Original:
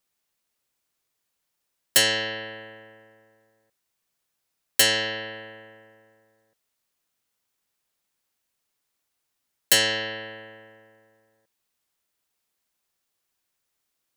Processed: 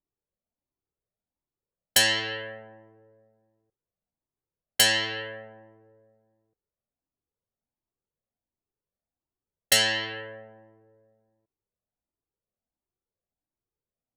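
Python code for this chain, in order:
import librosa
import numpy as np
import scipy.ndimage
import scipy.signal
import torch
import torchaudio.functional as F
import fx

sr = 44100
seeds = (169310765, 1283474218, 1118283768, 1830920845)

y = fx.env_lowpass(x, sr, base_hz=510.0, full_db=-22.5)
y = fx.comb_cascade(y, sr, direction='rising', hz=1.4)
y = y * librosa.db_to_amplitude(3.5)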